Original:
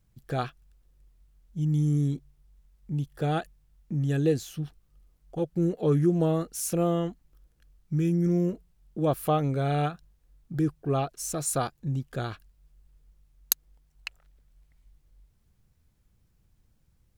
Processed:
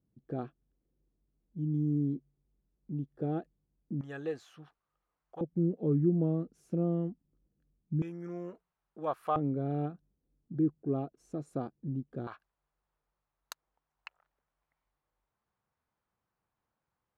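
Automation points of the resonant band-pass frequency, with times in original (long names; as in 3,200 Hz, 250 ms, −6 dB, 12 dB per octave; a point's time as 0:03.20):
resonant band-pass, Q 1.6
290 Hz
from 0:04.01 1,100 Hz
from 0:05.41 230 Hz
from 0:08.02 1,100 Hz
from 0:09.36 270 Hz
from 0:12.27 1,000 Hz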